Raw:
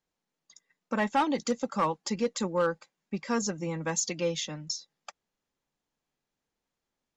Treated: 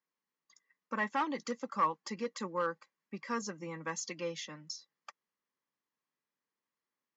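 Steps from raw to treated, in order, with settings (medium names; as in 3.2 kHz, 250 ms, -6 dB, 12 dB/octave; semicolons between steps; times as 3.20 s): cabinet simulation 180–6700 Hz, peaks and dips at 710 Hz -6 dB, 1.1 kHz +9 dB, 1.9 kHz +7 dB; band-stop 3.7 kHz, Q 17; trim -8 dB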